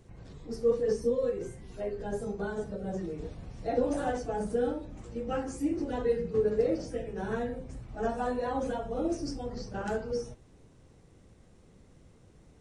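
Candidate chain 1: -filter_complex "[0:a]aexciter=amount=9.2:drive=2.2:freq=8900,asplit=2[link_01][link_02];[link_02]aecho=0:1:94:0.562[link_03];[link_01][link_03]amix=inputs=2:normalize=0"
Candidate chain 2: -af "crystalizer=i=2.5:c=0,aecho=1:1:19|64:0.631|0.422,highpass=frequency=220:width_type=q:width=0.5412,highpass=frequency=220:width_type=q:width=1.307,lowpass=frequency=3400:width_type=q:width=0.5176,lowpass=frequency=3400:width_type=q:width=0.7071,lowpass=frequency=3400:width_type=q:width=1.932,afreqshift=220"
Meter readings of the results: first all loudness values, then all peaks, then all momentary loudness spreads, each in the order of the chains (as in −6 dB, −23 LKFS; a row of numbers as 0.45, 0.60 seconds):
−31.5, −30.0 LKFS; −15.0, −13.0 dBFS; 12, 13 LU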